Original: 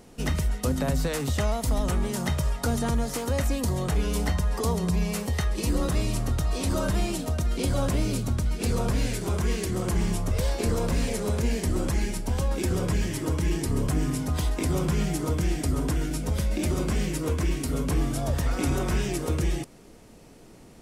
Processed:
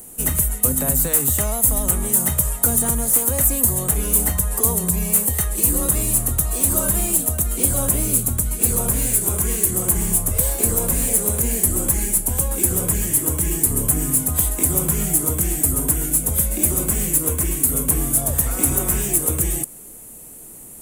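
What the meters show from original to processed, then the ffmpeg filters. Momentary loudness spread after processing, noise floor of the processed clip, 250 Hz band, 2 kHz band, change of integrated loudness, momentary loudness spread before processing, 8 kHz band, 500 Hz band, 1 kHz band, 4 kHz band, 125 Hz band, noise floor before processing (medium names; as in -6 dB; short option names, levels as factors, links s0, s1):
4 LU, -40 dBFS, +1.5 dB, +1.5 dB, +10.0 dB, 2 LU, +19.5 dB, +1.5 dB, +1.5 dB, 0.0 dB, +1.5 dB, -50 dBFS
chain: -filter_complex "[0:a]acrossover=split=240|990|3100[s0][s1][s2][s3];[s3]asoftclip=type=tanh:threshold=0.0211[s4];[s0][s1][s2][s4]amix=inputs=4:normalize=0,aexciter=amount=14.7:drive=7.2:freq=7700,volume=1.19"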